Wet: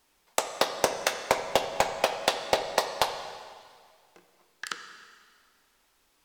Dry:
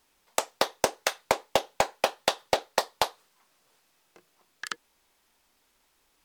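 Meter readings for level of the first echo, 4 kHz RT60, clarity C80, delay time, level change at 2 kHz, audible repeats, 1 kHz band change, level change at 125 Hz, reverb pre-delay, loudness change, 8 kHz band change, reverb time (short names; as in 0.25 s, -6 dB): none, 1.9 s, 8.5 dB, none, +1.0 dB, none, +0.5 dB, +1.0 dB, 6 ms, +0.5 dB, +0.5 dB, 1.9 s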